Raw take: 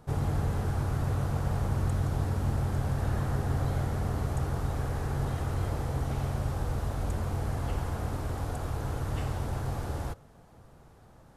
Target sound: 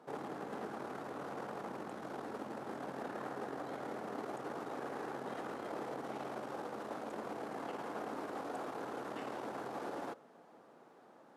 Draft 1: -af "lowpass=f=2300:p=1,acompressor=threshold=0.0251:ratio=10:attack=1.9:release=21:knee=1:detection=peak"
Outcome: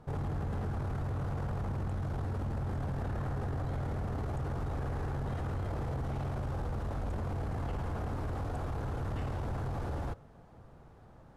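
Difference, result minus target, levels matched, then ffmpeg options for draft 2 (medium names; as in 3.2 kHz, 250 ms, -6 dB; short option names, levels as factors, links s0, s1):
250 Hz band -2.5 dB
-af "lowpass=f=2300:p=1,acompressor=threshold=0.0251:ratio=10:attack=1.9:release=21:knee=1:detection=peak,highpass=f=250:w=0.5412,highpass=f=250:w=1.3066"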